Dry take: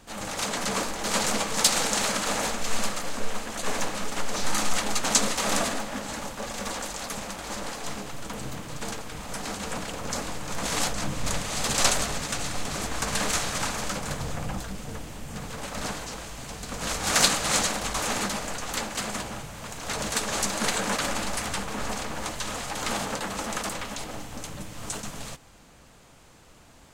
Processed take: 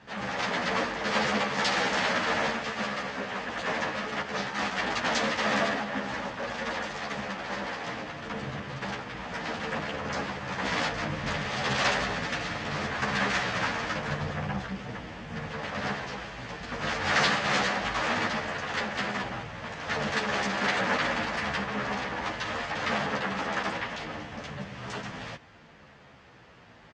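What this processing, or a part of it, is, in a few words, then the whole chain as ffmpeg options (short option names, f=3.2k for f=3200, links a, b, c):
barber-pole flanger into a guitar amplifier: -filter_complex "[0:a]asplit=2[a][b];[b]adelay=11.6,afreqshift=-0.69[c];[a][c]amix=inputs=2:normalize=1,asoftclip=type=tanh:threshold=-19dB,highpass=84,equalizer=f=300:t=q:w=4:g=-3,equalizer=f=1.8k:t=q:w=4:g=6,equalizer=f=4k:t=q:w=4:g=-5,lowpass=f=4.5k:w=0.5412,lowpass=f=4.5k:w=1.3066,volume=4.5dB"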